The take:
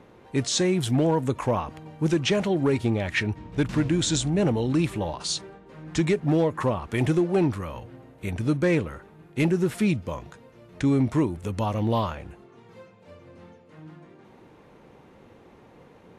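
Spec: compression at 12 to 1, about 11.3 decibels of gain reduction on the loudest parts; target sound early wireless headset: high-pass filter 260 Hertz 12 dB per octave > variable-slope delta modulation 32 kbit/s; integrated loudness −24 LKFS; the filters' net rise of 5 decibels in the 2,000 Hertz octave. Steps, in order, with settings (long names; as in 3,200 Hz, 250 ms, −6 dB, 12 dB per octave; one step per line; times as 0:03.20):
parametric band 2,000 Hz +6 dB
downward compressor 12 to 1, threshold −29 dBFS
high-pass filter 260 Hz 12 dB per octave
variable-slope delta modulation 32 kbit/s
level +13 dB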